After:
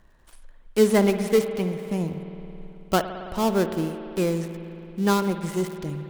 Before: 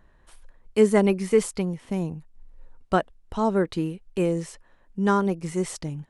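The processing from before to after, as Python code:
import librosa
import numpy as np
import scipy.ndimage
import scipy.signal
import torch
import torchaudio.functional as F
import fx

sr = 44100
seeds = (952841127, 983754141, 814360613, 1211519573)

y = fx.dead_time(x, sr, dead_ms=0.14)
y = fx.high_shelf(y, sr, hz=4800.0, db=5.0)
y = fx.rev_spring(y, sr, rt60_s=3.2, pass_ms=(54,), chirp_ms=65, drr_db=8.0)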